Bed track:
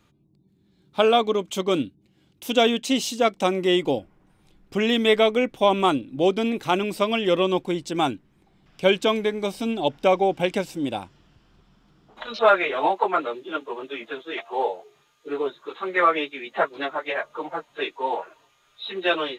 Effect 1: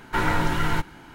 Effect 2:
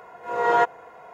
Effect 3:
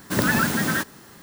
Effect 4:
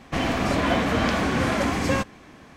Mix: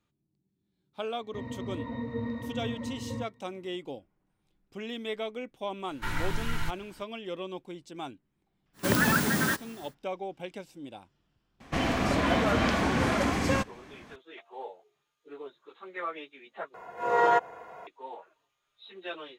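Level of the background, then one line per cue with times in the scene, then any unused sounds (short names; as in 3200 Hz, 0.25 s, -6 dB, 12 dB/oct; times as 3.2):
bed track -16.5 dB
1.21 add 4 -3.5 dB + octave resonator A#, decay 0.14 s
5.89 add 1 -5 dB + bell 470 Hz -12 dB 2.8 oct
8.73 add 3 -3.5 dB, fades 0.10 s
11.6 add 4 -3.5 dB
16.74 replace with 2 -0.5 dB + limiter -13 dBFS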